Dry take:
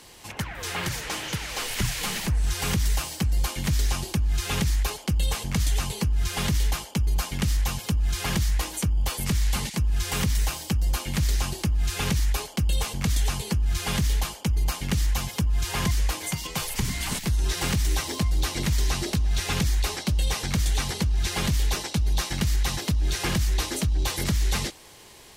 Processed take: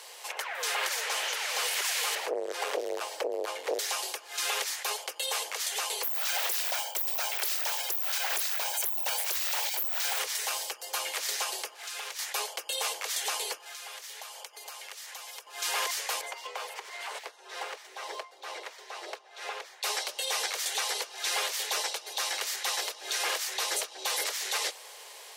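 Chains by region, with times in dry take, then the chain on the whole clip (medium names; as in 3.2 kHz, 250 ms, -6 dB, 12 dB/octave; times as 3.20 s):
2.15–3.79 s: high-pass 56 Hz + tilt EQ -3.5 dB/octave + transformer saturation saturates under 240 Hz
6.03–10.19 s: careless resampling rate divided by 2×, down filtered, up zero stuff + comb 1.3 ms, depth 88% + loudspeaker Doppler distortion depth 0.88 ms
11.74–12.19 s: high-pass 520 Hz 6 dB/octave + compression 10:1, threshold -36 dBFS + loudspeaker Doppler distortion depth 0.18 ms
13.57–15.47 s: high-pass 450 Hz + compression 8:1, threshold -42 dBFS
16.21–19.83 s: low-pass 1.1 kHz 6 dB/octave + peaking EQ 110 Hz -11.5 dB 1.8 oct + compression, threshold -32 dBFS
whole clip: steep high-pass 450 Hz 48 dB/octave; peak limiter -22.5 dBFS; trim +2.5 dB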